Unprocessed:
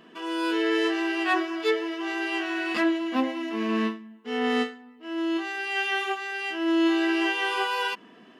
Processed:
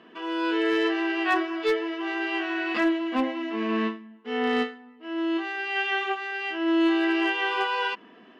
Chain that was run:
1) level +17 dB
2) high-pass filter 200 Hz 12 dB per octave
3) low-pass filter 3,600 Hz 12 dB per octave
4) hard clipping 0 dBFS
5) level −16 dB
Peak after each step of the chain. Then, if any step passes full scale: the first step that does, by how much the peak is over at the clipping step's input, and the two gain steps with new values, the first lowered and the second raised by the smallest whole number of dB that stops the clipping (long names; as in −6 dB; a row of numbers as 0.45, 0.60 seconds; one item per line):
+4.5, +5.5, +5.0, 0.0, −16.0 dBFS
step 1, 5.0 dB
step 1 +12 dB, step 5 −11 dB